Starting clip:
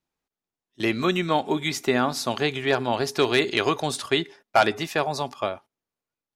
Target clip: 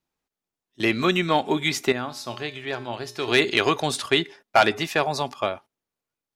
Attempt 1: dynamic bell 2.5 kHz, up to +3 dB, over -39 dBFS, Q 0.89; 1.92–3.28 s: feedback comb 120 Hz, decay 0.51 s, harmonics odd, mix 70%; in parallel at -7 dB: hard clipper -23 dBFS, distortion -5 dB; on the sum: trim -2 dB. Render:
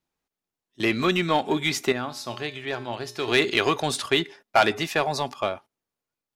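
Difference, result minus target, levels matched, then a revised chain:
hard clipper: distortion +11 dB
dynamic bell 2.5 kHz, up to +3 dB, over -39 dBFS, Q 0.89; 1.92–3.28 s: feedback comb 120 Hz, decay 0.51 s, harmonics odd, mix 70%; in parallel at -7 dB: hard clipper -12.5 dBFS, distortion -16 dB; on the sum: trim -2 dB

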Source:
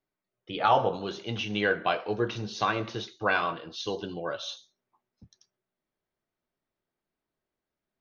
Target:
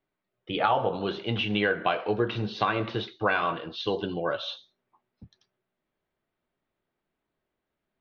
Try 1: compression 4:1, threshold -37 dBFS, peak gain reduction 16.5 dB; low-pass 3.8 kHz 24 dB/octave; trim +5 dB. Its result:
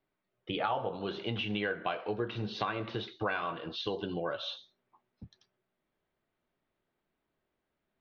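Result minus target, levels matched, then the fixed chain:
compression: peak gain reduction +8 dB
compression 4:1, threshold -26 dBFS, peak gain reduction 8.5 dB; low-pass 3.8 kHz 24 dB/octave; trim +5 dB

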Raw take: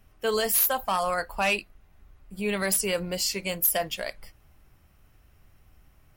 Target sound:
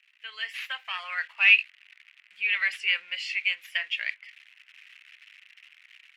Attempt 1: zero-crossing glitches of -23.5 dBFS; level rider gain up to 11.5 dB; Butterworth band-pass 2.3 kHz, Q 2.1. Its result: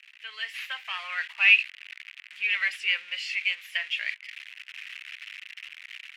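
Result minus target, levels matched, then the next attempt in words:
zero-crossing glitches: distortion +10 dB
zero-crossing glitches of -34.5 dBFS; level rider gain up to 11.5 dB; Butterworth band-pass 2.3 kHz, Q 2.1

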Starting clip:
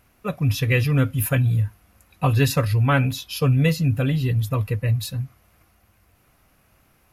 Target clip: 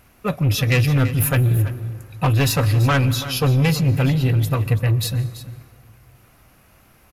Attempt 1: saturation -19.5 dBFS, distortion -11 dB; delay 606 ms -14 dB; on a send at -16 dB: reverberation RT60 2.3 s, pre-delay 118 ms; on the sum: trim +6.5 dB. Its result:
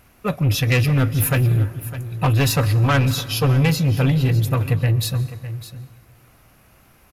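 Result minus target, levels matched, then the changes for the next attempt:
echo 273 ms late
change: delay 333 ms -14 dB

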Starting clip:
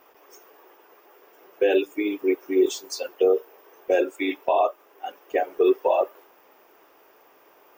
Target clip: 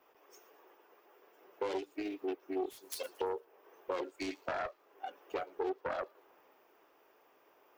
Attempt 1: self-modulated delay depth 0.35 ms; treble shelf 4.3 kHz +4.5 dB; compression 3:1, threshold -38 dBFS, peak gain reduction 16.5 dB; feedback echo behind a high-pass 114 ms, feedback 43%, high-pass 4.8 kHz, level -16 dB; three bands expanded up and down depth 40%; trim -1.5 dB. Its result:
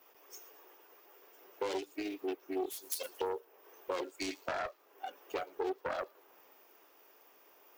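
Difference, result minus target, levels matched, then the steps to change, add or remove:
8 kHz band +6.0 dB
change: treble shelf 4.3 kHz -7 dB

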